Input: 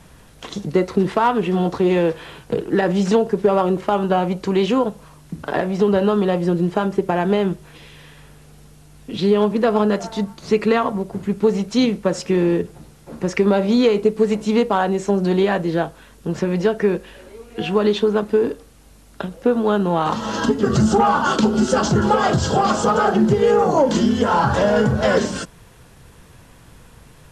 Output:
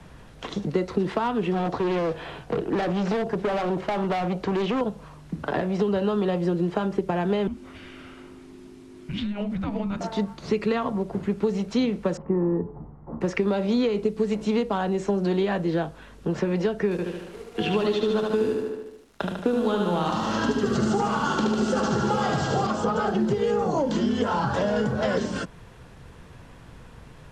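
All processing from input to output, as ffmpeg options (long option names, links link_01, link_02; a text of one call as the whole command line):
ffmpeg -i in.wav -filter_complex "[0:a]asettb=1/sr,asplit=3[link_01][link_02][link_03];[link_01]atrim=end=1.534[link_04];[link_02]atrim=start=1.53:end=4.81,asetpts=PTS-STARTPTS,afade=type=in:duration=0.004:curve=qsin,afade=type=out:start_time=3.276:duration=0.004:curve=qsin,acrossover=split=5000[link_05][link_06];[link_06]acompressor=threshold=-49dB:ratio=4:attack=1:release=60[link_07];[link_05][link_07]amix=inputs=2:normalize=0,equalizer=frequency=700:width_type=o:width=0.38:gain=7,asoftclip=type=hard:threshold=-18.5dB[link_08];[link_03]atrim=start=4.806[link_09];[link_04][link_08]acrossfade=duration=0.004:curve1=hsin:curve2=qsin[link_10];[link_10][link_09]acrossfade=duration=0.004:curve1=qsin:curve2=hsin,asettb=1/sr,asplit=3[link_11][link_12][link_13];[link_11]atrim=end=7.474[link_14];[link_12]atrim=start=7.47:end=10.01,asetpts=PTS-STARTPTS,afade=type=in:duration=0.004:curve=qsin,afade=type=out:start_time=2.536:duration=0.004:curve=qsin,afreqshift=-410,acompressor=threshold=-24dB:ratio=3:attack=3.2:release=140:knee=1:detection=peak[link_15];[link_13]atrim=start=10.006[link_16];[link_14][link_15]acrossfade=duration=0.004:curve1=hsin:curve2=qsin[link_17];[link_17][link_16]acrossfade=duration=0.004:curve1=qsin:curve2=hsin,asettb=1/sr,asplit=3[link_18][link_19][link_20];[link_18]atrim=end=12.174[link_21];[link_19]atrim=start=12.17:end=13.21,asetpts=PTS-STARTPTS,afade=type=in:duration=0.004:curve=qsin,afade=type=out:start_time=1.036:duration=0.004:curve=qsin,lowpass=frequency=1200:width=0.5412,lowpass=frequency=1200:width=1.3066,aecho=1:1:1:0.36,atrim=end_sample=45864,bandreject=frequency=143.3:width_type=h:width=4,bandreject=frequency=286.6:width_type=h:width=4,bandreject=frequency=429.9:width_type=h:width=4,bandreject=frequency=573.2:width_type=h:width=4,bandreject=frequency=716.5:width_type=h:width=4,bandreject=frequency=859.8:width_type=h:width=4,bandreject=frequency=1003.1:width_type=h:width=4,bandreject=frequency=1146.4:width_type=h:width=4,bandreject=frequency=1289.7:width_type=h:width=4,bandreject=frequency=1433:width_type=h:width=4[link_22];[link_20]atrim=start=13.206[link_23];[link_21][link_22]acrossfade=duration=0.004:curve1=hsin:curve2=qsin[link_24];[link_24][link_23]acrossfade=duration=0.004:curve1=qsin:curve2=hsin,asettb=1/sr,asplit=3[link_25][link_26][link_27];[link_25]atrim=end=16.914[link_28];[link_26]atrim=start=16.91:end=22.67,asetpts=PTS-STARTPTS,afade=type=in:duration=0.004:curve=qsin,afade=type=out:start_time=5.756:duration=0.004:curve=qsin,highshelf=frequency=3800:gain=9.5,aeval=exprs='sgn(val(0))*max(abs(val(0))-0.00708,0)':channel_layout=same,aecho=1:1:74|148|222|296|370|444|518|592:0.668|0.381|0.217|0.124|0.0706|0.0402|0.0229|0.0131,atrim=end_sample=254016[link_29];[link_27]atrim=start=22.666[link_30];[link_28][link_29]acrossfade=duration=0.004:curve1=hsin:curve2=qsin[link_31];[link_31][link_30]acrossfade=duration=0.004:curve1=qsin:curve2=hsin,acrossover=split=110|260|3200[link_32][link_33][link_34][link_35];[link_32]acompressor=threshold=-43dB:ratio=4[link_36];[link_33]acompressor=threshold=-30dB:ratio=4[link_37];[link_34]acompressor=threshold=-25dB:ratio=4[link_38];[link_35]acompressor=threshold=-36dB:ratio=4[link_39];[link_36][link_37][link_38][link_39]amix=inputs=4:normalize=0,aemphasis=mode=reproduction:type=50fm" out.wav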